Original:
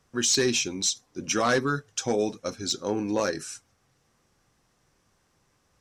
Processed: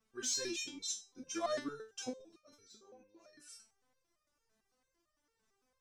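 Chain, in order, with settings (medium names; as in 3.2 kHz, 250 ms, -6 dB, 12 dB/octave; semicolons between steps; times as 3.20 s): 0.70–1.58 s: elliptic low-pass 12 kHz; 2.09–3.48 s: level held to a coarse grid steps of 23 dB; resonator arpeggio 8.9 Hz 220–610 Hz; trim +2 dB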